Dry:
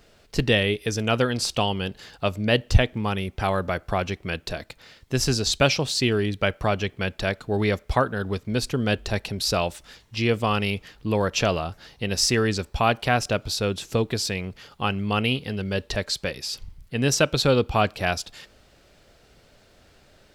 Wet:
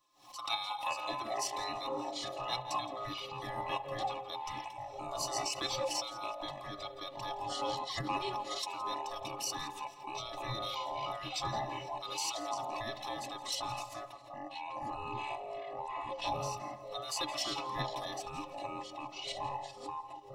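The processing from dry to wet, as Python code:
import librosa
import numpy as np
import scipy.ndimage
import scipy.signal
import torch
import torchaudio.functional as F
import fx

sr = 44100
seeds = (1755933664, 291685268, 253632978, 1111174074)

y = fx.band_swap(x, sr, width_hz=1000)
y = fx.rev_spring(y, sr, rt60_s=1.1, pass_ms=(51,), chirp_ms=30, drr_db=15.0)
y = fx.level_steps(y, sr, step_db=9)
y = fx.ellip_lowpass(y, sr, hz=1100.0, order=4, stop_db=40, at=(14.12, 16.25))
y = fx.echo_pitch(y, sr, ms=156, semitones=-6, count=3, db_per_echo=-3.0)
y = fx.fixed_phaser(y, sr, hz=300.0, stages=8)
y = fx.stiff_resonator(y, sr, f0_hz=62.0, decay_s=0.22, stiffness=0.03)
y = fx.echo_feedback(y, sr, ms=168, feedback_pct=29, wet_db=-18)
y = fx.pre_swell(y, sr, db_per_s=120.0)
y = y * librosa.db_to_amplitude(-2.0)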